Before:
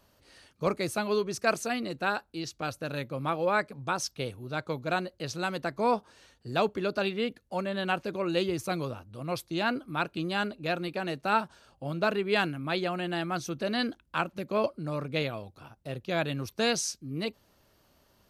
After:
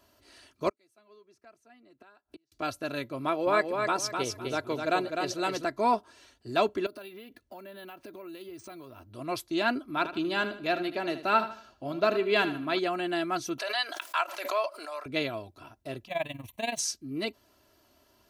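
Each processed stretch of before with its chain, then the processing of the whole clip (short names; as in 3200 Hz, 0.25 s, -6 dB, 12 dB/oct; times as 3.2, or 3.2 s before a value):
0.69–2.52 low shelf 99 Hz -12 dB + flipped gate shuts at -30 dBFS, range -36 dB + three-band squash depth 100%
3.21–5.65 bell 470 Hz +5 dB 0.41 oct + feedback echo 0.254 s, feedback 25%, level -5 dB
6.86–9.13 compressor 10:1, threshold -42 dBFS + careless resampling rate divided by 3×, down filtered, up hold
9.82–12.79 bell 8600 Hz -14.5 dB 0.21 oct + feedback echo 77 ms, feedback 35%, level -12 dB
13.58–15.06 HPF 660 Hz 24 dB/oct + backwards sustainer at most 50 dB/s
16.07–16.79 G.711 law mismatch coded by mu + fixed phaser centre 1400 Hz, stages 6 + AM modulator 21 Hz, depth 70%
whole clip: HPF 99 Hz 6 dB/oct; comb 3 ms, depth 62%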